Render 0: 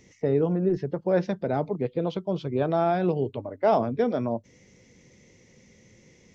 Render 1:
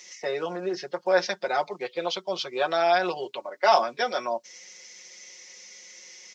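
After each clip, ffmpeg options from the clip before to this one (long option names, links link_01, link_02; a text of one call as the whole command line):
ffmpeg -i in.wav -af "highpass=1000,equalizer=frequency=5200:width=1.4:gain=9.5,aecho=1:1:5.5:0.8,volume=8dB" out.wav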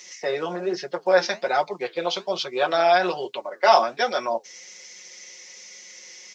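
ffmpeg -i in.wav -af "flanger=delay=4.8:depth=8.5:regen=-67:speed=1.2:shape=sinusoidal,volume=7.5dB" out.wav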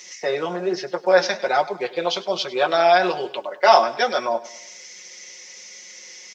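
ffmpeg -i in.wav -af "aecho=1:1:101|202|303|404:0.126|0.0604|0.029|0.0139,volume=2.5dB" out.wav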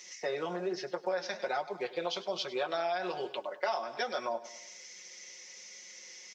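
ffmpeg -i in.wav -af "acompressor=threshold=-21dB:ratio=8,volume=-8.5dB" out.wav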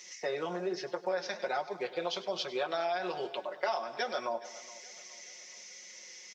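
ffmpeg -i in.wav -af "aecho=1:1:420|840|1260|1680:0.1|0.048|0.023|0.0111" out.wav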